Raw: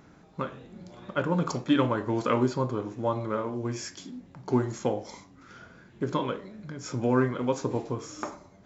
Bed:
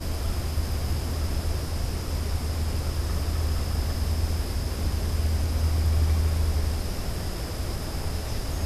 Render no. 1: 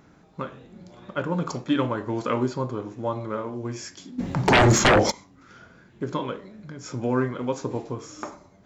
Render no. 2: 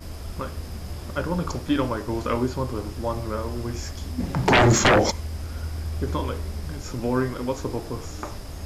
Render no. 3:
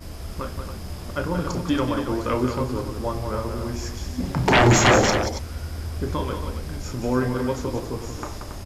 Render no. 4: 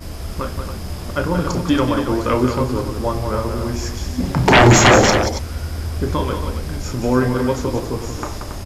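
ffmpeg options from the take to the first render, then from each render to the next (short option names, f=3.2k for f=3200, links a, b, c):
-filter_complex "[0:a]asplit=3[a][b][c];[a]afade=t=out:st=4.18:d=0.02[d];[b]aeval=exprs='0.251*sin(PI/2*7.94*val(0)/0.251)':c=same,afade=t=in:st=4.18:d=0.02,afade=t=out:st=5.1:d=0.02[e];[c]afade=t=in:st=5.1:d=0.02[f];[d][e][f]amix=inputs=3:normalize=0"
-filter_complex "[1:a]volume=-7dB[a];[0:a][a]amix=inputs=2:normalize=0"
-af "aecho=1:1:32.07|180.8|277:0.316|0.447|0.316"
-af "volume=6dB,alimiter=limit=-1dB:level=0:latency=1"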